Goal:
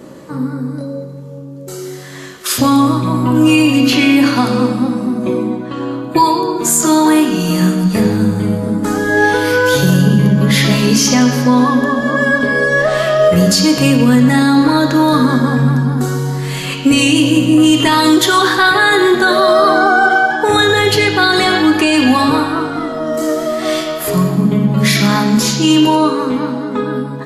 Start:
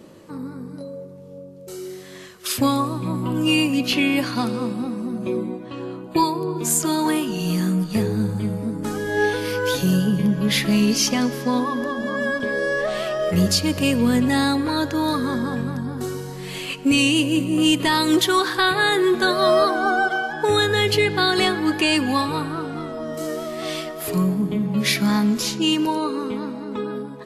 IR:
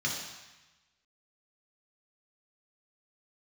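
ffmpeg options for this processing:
-filter_complex "[0:a]asplit=2[link_01][link_02];[1:a]atrim=start_sample=2205,highshelf=frequency=9800:gain=-5.5[link_03];[link_02][link_03]afir=irnorm=-1:irlink=0,volume=-10dB[link_04];[link_01][link_04]amix=inputs=2:normalize=0,alimiter=level_in=10dB:limit=-1dB:release=50:level=0:latency=1,volume=-1dB"

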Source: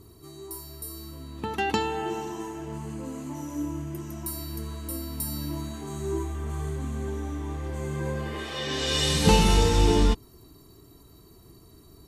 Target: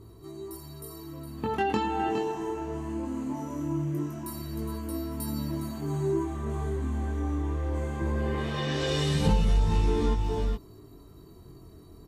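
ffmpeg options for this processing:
ffmpeg -i in.wav -filter_complex "[0:a]asettb=1/sr,asplit=3[link_01][link_02][link_03];[link_01]atrim=end=8.014[link_04];[link_02]atrim=start=8.01:end=9.79,asetpts=PTS-STARTPTS,afade=type=in:duration=0.004:curve=qsin,afade=type=out:start_time=1.776:duration=0.004:curve=qsin,lowshelf=frequency=89:gain=9[link_05];[link_03]atrim=start=9.786[link_06];[link_04][link_05]acrossfade=duration=0.004:curve1=hsin:curve2=qsin[link_07];[link_07][link_06]acrossfade=duration=0.004:curve1=qsin:curve2=hsin,aecho=1:1:412:0.316,flanger=delay=18:depth=6.7:speed=0.2,acompressor=threshold=-27dB:ratio=4,highshelf=frequency=2300:gain=-10,volume=5.5dB" out.wav

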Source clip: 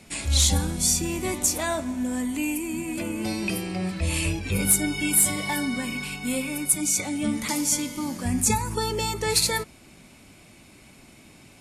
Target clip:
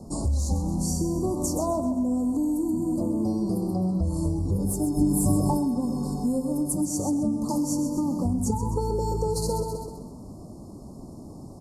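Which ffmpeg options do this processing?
ffmpeg -i in.wav -filter_complex "[0:a]asuperstop=centerf=2300:order=12:qfactor=0.67,tiltshelf=frequency=1300:gain=8,asplit=2[link_01][link_02];[link_02]aecho=0:1:129|258|387|516|645:0.376|0.158|0.0663|0.0278|0.0117[link_03];[link_01][link_03]amix=inputs=2:normalize=0,acompressor=threshold=-26dB:ratio=6,asettb=1/sr,asplit=3[link_04][link_05][link_06];[link_04]atrim=end=4.974[link_07];[link_05]atrim=start=4.97:end=5.57,asetpts=PTS-STARTPTS,afade=type=in:duration=0.004:curve=qsin,afade=type=out:start_time=0.596:duration=0.004:curve=qsin,lowshelf=frequency=220:gain=10.5[link_08];[link_06]atrim=start=5.566[link_09];[link_07][link_08]acrossfade=duration=0.004:curve1=hsin:curve2=qsin[link_10];[link_10][link_09]acrossfade=duration=0.004:curve1=qsin:curve2=hsin,volume=3dB" out.wav

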